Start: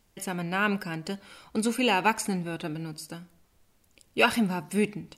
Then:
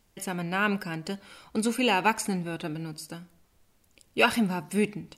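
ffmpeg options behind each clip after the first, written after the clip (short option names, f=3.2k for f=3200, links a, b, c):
-af anull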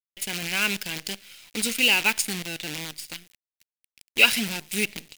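-af "acrusher=bits=6:dc=4:mix=0:aa=0.000001,highshelf=f=1.7k:t=q:w=1.5:g=12,volume=-5dB"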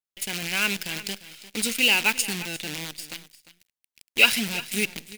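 -af "aecho=1:1:350:0.158"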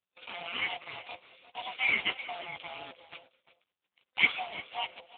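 -af "afftfilt=real='real(if(lt(b,1008),b+24*(1-2*mod(floor(b/24),2)),b),0)':imag='imag(if(lt(b,1008),b+24*(1-2*mod(floor(b/24),2)),b),0)':win_size=2048:overlap=0.75,volume=-4.5dB" -ar 8000 -c:a libopencore_amrnb -b:a 5900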